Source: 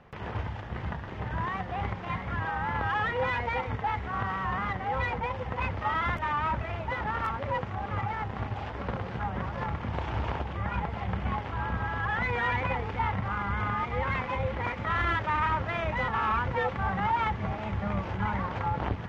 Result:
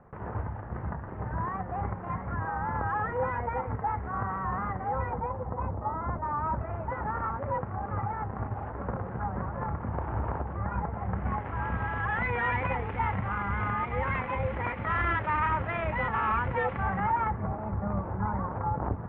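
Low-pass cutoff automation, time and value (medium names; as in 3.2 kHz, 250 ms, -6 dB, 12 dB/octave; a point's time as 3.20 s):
low-pass 24 dB/octave
4.86 s 1.5 kHz
5.88 s 1 kHz
6.84 s 1.5 kHz
11.01 s 1.5 kHz
11.81 s 2.6 kHz
16.78 s 2.6 kHz
17.54 s 1.3 kHz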